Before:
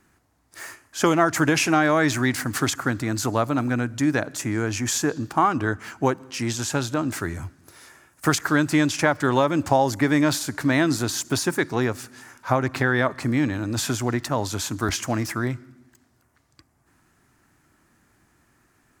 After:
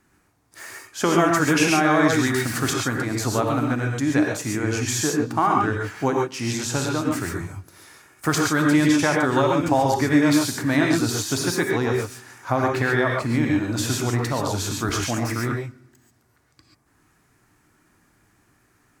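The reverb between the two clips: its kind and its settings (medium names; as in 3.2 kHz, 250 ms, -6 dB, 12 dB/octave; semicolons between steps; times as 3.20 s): gated-style reverb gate 160 ms rising, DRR -0.5 dB; trim -2 dB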